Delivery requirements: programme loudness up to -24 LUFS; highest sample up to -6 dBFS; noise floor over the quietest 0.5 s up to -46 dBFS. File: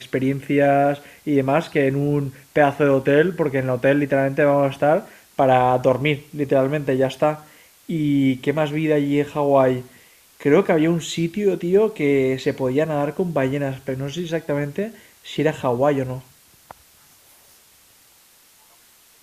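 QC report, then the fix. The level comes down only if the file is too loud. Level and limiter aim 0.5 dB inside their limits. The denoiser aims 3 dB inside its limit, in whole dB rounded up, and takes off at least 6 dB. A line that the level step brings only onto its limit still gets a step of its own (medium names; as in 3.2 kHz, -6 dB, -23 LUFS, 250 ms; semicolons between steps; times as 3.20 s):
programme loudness -20.0 LUFS: fail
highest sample -3.0 dBFS: fail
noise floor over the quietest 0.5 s -53 dBFS: pass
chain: trim -4.5 dB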